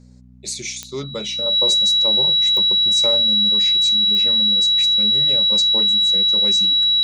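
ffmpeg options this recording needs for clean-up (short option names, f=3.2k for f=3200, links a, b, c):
-af "adeclick=t=4,bandreject=f=61.9:t=h:w=4,bandreject=f=123.8:t=h:w=4,bandreject=f=185.7:t=h:w=4,bandreject=f=247.6:t=h:w=4,bandreject=f=3.9k:w=30"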